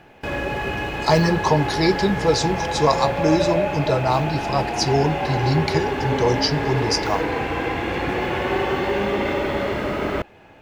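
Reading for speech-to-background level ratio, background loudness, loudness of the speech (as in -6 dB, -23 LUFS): 2.0 dB, -24.0 LUFS, -22.0 LUFS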